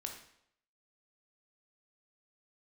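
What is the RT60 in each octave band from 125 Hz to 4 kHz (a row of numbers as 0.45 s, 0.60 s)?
0.65 s, 0.70 s, 0.70 s, 0.70 s, 0.65 s, 0.65 s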